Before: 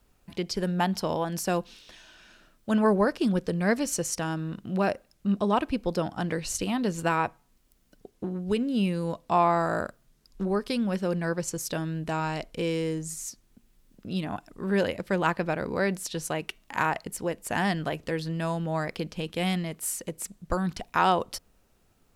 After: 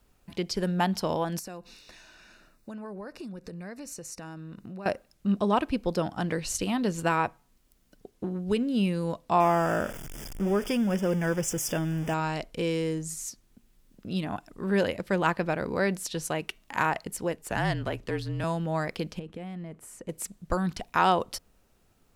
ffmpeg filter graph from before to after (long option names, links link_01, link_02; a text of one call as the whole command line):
ffmpeg -i in.wav -filter_complex "[0:a]asettb=1/sr,asplit=3[link_01][link_02][link_03];[link_01]atrim=end=1.394[link_04];[link_02]atrim=start=1.39:end=4.86,asetpts=PTS-STARTPTS,afade=type=in:duration=0.004:curve=qsin,afade=type=out:start_time=3.466:duration=0.004:curve=qsin,asuperstop=centerf=3200:order=4:qfactor=5.2,acompressor=threshold=-38dB:ratio=6:attack=3.2:release=140:knee=1:detection=peak[link_05];[link_03]atrim=start=4.856[link_06];[link_04][link_05]acrossfade=duration=0.004:curve1=hsin:curve2=qsin[link_07];[link_07][link_06]acrossfade=duration=0.004:curve1=qsin:curve2=hsin,asettb=1/sr,asplit=3[link_08][link_09][link_10];[link_08]atrim=end=9.404[link_11];[link_09]atrim=start=9.4:end=12.14,asetpts=PTS-STARTPTS,afade=type=in:duration=0.004:curve=qsin,afade=type=out:start_time=2.736:duration=0.004:curve=qsin,aeval=exprs='val(0)+0.5*0.02*sgn(val(0))':channel_layout=same,asuperstop=centerf=4100:order=12:qfactor=3.5,equalizer=frequency=1100:width_type=o:width=0.33:gain=-4.5[link_12];[link_10]atrim=start=12.136[link_13];[link_11][link_12]acrossfade=duration=0.004:curve1=hsin:curve2=qsin[link_14];[link_14][link_13]acrossfade=duration=0.004:curve1=qsin:curve2=hsin,asettb=1/sr,asplit=3[link_15][link_16][link_17];[link_15]atrim=end=17.364[link_18];[link_16]atrim=start=17.36:end=18.44,asetpts=PTS-STARTPTS,afade=type=in:duration=0.004:curve=qsin,afade=type=out:start_time=1.076:duration=0.004:curve=qsin,aeval=exprs='if(lt(val(0),0),0.708*val(0),val(0))':channel_layout=same,highshelf=frequency=5400:gain=-3.5,afreqshift=-37[link_19];[link_17]atrim=start=18.436[link_20];[link_18][link_19]acrossfade=duration=0.004:curve1=hsin:curve2=qsin[link_21];[link_21][link_20]acrossfade=duration=0.004:curve1=qsin:curve2=hsin,asettb=1/sr,asplit=3[link_22][link_23][link_24];[link_22]atrim=end=19.194[link_25];[link_23]atrim=start=19.19:end=20.09,asetpts=PTS-STARTPTS,afade=type=in:duration=0.004:curve=qsin,afade=type=out:start_time=0.896:duration=0.004:curve=qsin,equalizer=frequency=4400:width=0.59:gain=-14.5,acompressor=threshold=-34dB:ratio=10:attack=3.2:release=140:knee=1:detection=peak,lowpass=6800[link_26];[link_24]atrim=start=20.086[link_27];[link_25][link_26]acrossfade=duration=0.004:curve1=hsin:curve2=qsin[link_28];[link_28][link_27]acrossfade=duration=0.004:curve1=qsin:curve2=hsin" out.wav